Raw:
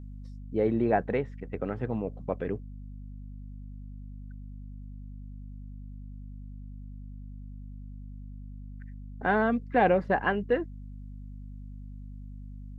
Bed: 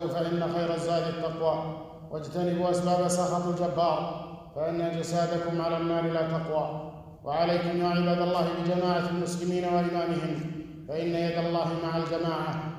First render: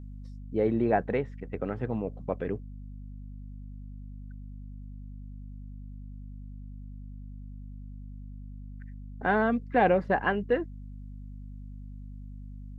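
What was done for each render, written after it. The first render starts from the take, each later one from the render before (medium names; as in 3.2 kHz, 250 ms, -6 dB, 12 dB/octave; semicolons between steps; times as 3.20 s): no audible change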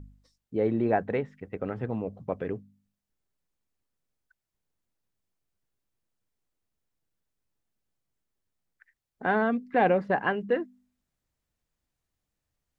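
de-hum 50 Hz, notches 5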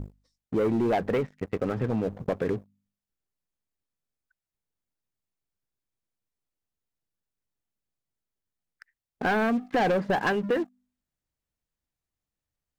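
waveshaping leveller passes 3; compression 2:1, threshold -28 dBFS, peak gain reduction 7.5 dB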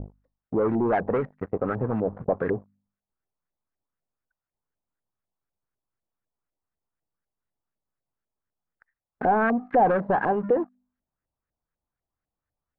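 LFO low-pass saw up 4 Hz 630–1800 Hz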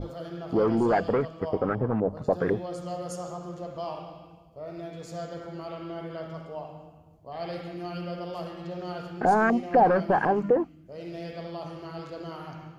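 add bed -9.5 dB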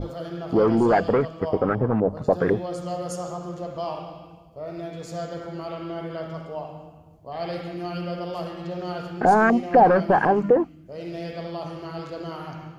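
trim +4.5 dB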